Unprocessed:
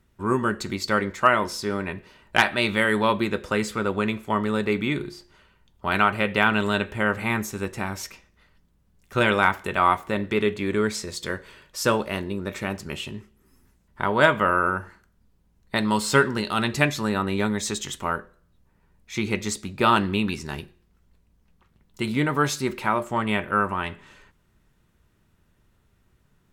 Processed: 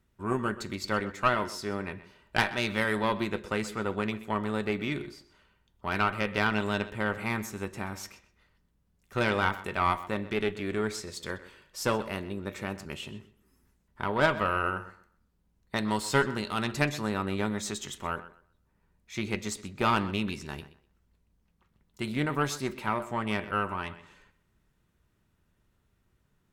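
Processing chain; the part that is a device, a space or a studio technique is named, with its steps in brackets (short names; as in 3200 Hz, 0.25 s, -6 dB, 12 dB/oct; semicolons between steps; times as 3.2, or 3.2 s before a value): rockabilly slapback (tube stage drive 9 dB, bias 0.7; tape echo 0.127 s, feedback 23%, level -15 dB, low-pass 4700 Hz); gain -3 dB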